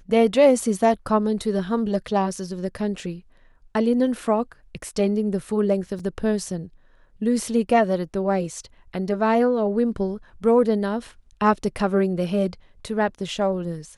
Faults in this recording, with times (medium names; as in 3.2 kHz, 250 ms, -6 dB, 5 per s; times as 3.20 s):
5.99 s: dropout 4.2 ms